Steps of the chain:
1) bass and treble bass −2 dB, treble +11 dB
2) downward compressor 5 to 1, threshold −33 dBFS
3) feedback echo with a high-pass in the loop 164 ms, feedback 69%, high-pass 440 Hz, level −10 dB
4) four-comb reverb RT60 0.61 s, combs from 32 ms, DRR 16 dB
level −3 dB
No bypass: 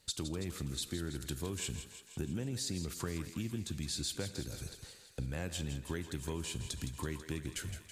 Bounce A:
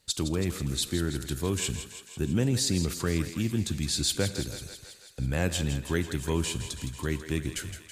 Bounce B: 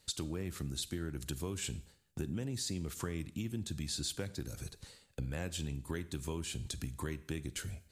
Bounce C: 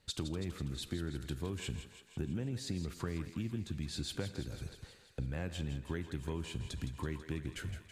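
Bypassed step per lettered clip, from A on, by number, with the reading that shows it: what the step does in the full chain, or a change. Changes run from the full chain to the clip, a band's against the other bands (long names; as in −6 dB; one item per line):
2, average gain reduction 8.5 dB
3, echo-to-direct ratio −7.5 dB to −16.0 dB
1, 8 kHz band −8.0 dB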